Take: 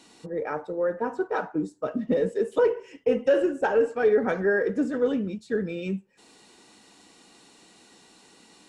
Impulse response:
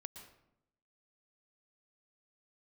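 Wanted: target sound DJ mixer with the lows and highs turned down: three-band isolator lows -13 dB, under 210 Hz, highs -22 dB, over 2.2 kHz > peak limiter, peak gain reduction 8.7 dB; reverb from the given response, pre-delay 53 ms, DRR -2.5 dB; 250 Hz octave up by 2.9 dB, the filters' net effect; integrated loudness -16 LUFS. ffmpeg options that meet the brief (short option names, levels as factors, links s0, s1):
-filter_complex "[0:a]equalizer=f=250:t=o:g=6.5,asplit=2[s0][s1];[1:a]atrim=start_sample=2205,adelay=53[s2];[s1][s2]afir=irnorm=-1:irlink=0,volume=2.24[s3];[s0][s3]amix=inputs=2:normalize=0,acrossover=split=210 2200:gain=0.224 1 0.0794[s4][s5][s6];[s4][s5][s6]amix=inputs=3:normalize=0,volume=2.24,alimiter=limit=0.447:level=0:latency=1"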